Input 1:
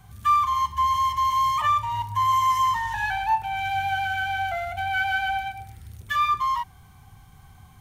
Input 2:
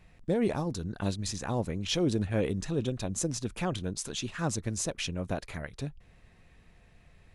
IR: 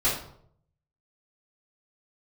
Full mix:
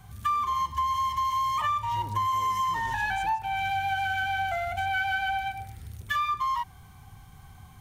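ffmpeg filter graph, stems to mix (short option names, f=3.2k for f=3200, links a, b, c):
-filter_complex "[0:a]volume=0.5dB[a];[1:a]highpass=48,lowshelf=f=140:g=11.5,asoftclip=type=hard:threshold=-29dB,volume=-11dB,afade=t=in:st=1.87:d=0.33:silence=0.421697,afade=t=out:st=3.01:d=0.46:silence=0.281838[b];[a][b]amix=inputs=2:normalize=0,acompressor=threshold=-25dB:ratio=5"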